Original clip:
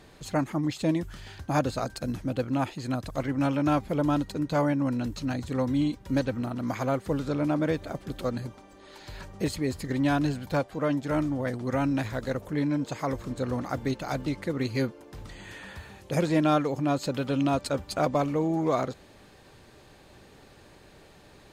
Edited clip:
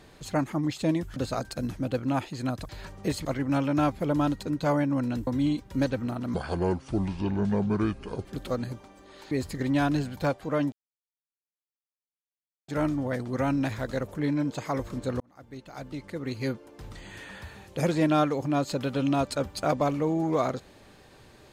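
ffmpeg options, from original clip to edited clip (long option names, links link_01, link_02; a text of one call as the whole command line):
ffmpeg -i in.wav -filter_complex "[0:a]asplit=10[link_01][link_02][link_03][link_04][link_05][link_06][link_07][link_08][link_09][link_10];[link_01]atrim=end=1.162[link_11];[link_02]atrim=start=1.608:end=3.142[link_12];[link_03]atrim=start=9.048:end=9.612[link_13];[link_04]atrim=start=3.138:end=5.162[link_14];[link_05]atrim=start=5.618:end=6.694[link_15];[link_06]atrim=start=6.69:end=7.99,asetpts=PTS-STARTPTS,asetrate=29988,aresample=44100[link_16];[link_07]atrim=start=7.986:end=9.052[link_17];[link_08]atrim=start=9.608:end=11.02,asetpts=PTS-STARTPTS,afade=type=out:start_time=1.408:duration=0.004:curve=hsin,apad=pad_dur=1.96[link_18];[link_09]atrim=start=11.02:end=13.54,asetpts=PTS-STARTPTS,afade=type=in:duration=0.004:curve=hsin,afade=type=out:start_time=2.516:duration=0.004:curve=hsin[link_19];[link_10]atrim=start=13.54,asetpts=PTS-STARTPTS,afade=type=in:duration=1.73[link_20];[link_11][link_12]acrossfade=duration=0.004:curve1=hsin:curve2=hsin[link_21];[link_21][link_13]acrossfade=duration=0.004:curve1=hsin:curve2=hsin[link_22];[link_22][link_14]acrossfade=duration=0.004:curve1=hsin:curve2=hsin[link_23];[link_23][link_15]acrossfade=duration=0.004:curve1=hsin:curve2=hsin[link_24];[link_24][link_16]acrossfade=duration=0.004:curve1=hsin:curve2=hsin[link_25];[link_25][link_17]acrossfade=duration=0.004:curve1=hsin:curve2=hsin[link_26];[link_18][link_19][link_20]concat=n=3:v=0:a=1[link_27];[link_26][link_27]acrossfade=duration=0.004:curve1=hsin:curve2=hsin" out.wav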